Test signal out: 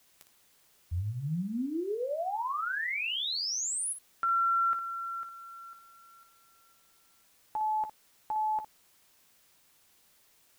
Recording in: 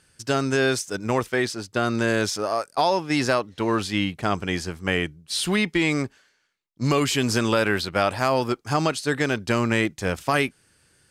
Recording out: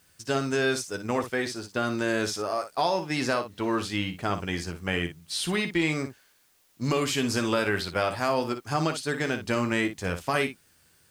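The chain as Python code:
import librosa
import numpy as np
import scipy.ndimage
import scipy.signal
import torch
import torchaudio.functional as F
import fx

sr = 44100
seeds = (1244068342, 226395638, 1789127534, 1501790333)

y = fx.room_early_taps(x, sr, ms=(12, 58), db=(-9.0, -10.0))
y = fx.dmg_noise_colour(y, sr, seeds[0], colour='white', level_db=-60.0)
y = y * librosa.db_to_amplitude(-5.0)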